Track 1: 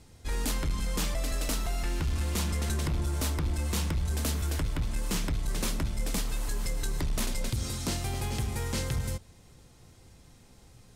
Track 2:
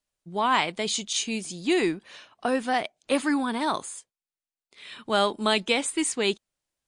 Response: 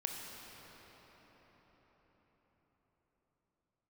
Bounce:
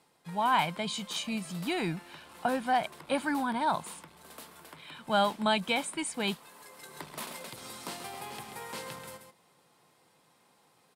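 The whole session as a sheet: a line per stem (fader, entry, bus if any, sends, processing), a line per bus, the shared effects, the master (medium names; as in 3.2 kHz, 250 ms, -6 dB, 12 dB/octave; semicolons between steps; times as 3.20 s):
-4.5 dB, 0.00 s, no send, echo send -8 dB, high-pass 450 Hz 12 dB/octave; auto duck -18 dB, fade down 0.80 s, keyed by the second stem
-10.0 dB, 0.00 s, no send, no echo send, comb 1.3 ms, depth 53%; level rider gain up to 3.5 dB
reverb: none
echo: delay 134 ms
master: fifteen-band graphic EQ 160 Hz +10 dB, 1 kHz +6 dB, 6.3 kHz -8 dB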